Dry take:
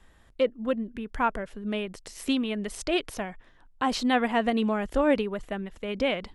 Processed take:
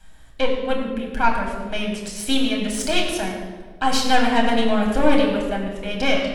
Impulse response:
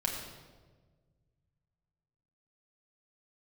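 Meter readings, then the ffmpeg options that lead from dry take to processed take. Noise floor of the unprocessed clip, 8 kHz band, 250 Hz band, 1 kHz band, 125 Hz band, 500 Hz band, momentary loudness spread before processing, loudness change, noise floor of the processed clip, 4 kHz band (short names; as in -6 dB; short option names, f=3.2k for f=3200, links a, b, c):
-58 dBFS, +11.5 dB, +6.0 dB, +7.5 dB, +7.0 dB, +5.0 dB, 12 LU, +6.5 dB, -41 dBFS, +10.0 dB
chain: -filter_complex "[0:a]highshelf=f=3.2k:g=9,aeval=exprs='0.316*(cos(1*acos(clip(val(0)/0.316,-1,1)))-cos(1*PI/2))+0.0447*(cos(4*acos(clip(val(0)/0.316,-1,1)))-cos(4*PI/2))':c=same[a];[1:a]atrim=start_sample=2205[b];[a][b]afir=irnorm=-1:irlink=0"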